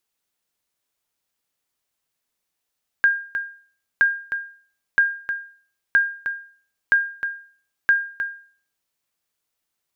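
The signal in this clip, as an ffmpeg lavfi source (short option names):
-f lavfi -i "aevalsrc='0.355*(sin(2*PI*1610*mod(t,0.97))*exp(-6.91*mod(t,0.97)/0.46)+0.335*sin(2*PI*1610*max(mod(t,0.97)-0.31,0))*exp(-6.91*max(mod(t,0.97)-0.31,0)/0.46))':d=5.82:s=44100"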